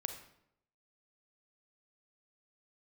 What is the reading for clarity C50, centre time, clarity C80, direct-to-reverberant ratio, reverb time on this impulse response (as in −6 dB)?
8.0 dB, 16 ms, 11.0 dB, 6.5 dB, 0.75 s